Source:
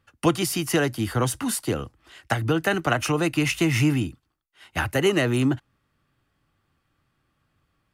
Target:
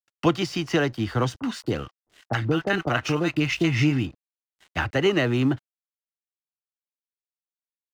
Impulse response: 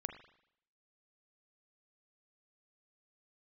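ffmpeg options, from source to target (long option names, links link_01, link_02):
-filter_complex "[0:a]lowpass=frequency=5600:width=0.5412,lowpass=frequency=5600:width=1.3066,aeval=exprs='sgn(val(0))*max(abs(val(0))-0.00422,0)':channel_layout=same,asettb=1/sr,asplit=3[link_01][link_02][link_03];[link_01]atrim=end=1.394[link_04];[link_02]atrim=start=1.39:end=4.06,asetpts=PTS-STARTPTS,afade=type=in:duration=0.004:curve=qsin,afade=type=out:start_time=2.666:duration=0.004:curve=qsin,acrossover=split=840[link_05][link_06];[link_06]adelay=30[link_07];[link_05][link_07]amix=inputs=2:normalize=0,atrim=end_sample=117747[link_08];[link_03]atrim=start=4.056[link_09];[link_04][link_08]acrossfade=duration=0.004:curve1=hsin:curve2=qsin[link_10];[link_10][link_09]acrossfade=duration=0.004:curve1=qsin:curve2=hsin"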